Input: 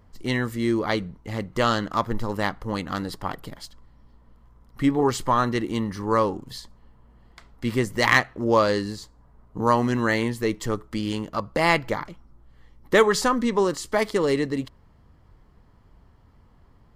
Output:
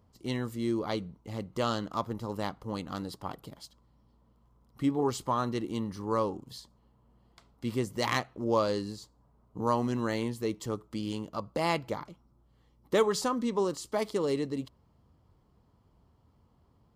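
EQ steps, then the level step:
high-pass filter 65 Hz
parametric band 1,800 Hz −9.5 dB 0.7 octaves
−7.0 dB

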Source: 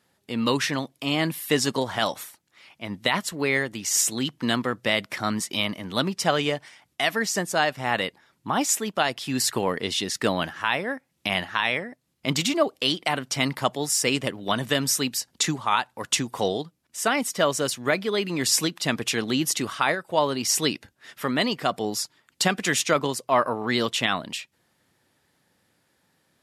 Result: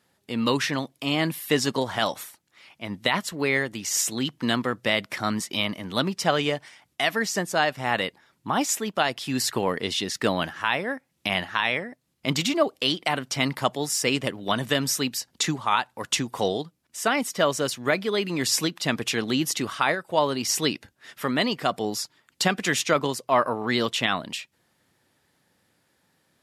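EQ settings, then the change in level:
dynamic equaliser 9,100 Hz, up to −4 dB, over −37 dBFS, Q 0.96
0.0 dB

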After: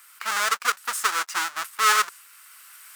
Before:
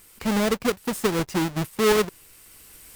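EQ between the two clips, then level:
dynamic equaliser 7,300 Hz, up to +7 dB, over −44 dBFS, Q 0.8
high-pass with resonance 1,300 Hz, resonance Q 3.3
0.0 dB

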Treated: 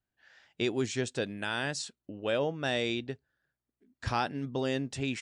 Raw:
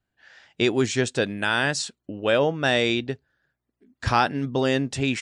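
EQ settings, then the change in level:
dynamic equaliser 1,400 Hz, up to −3 dB, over −32 dBFS, Q 1
−8.5 dB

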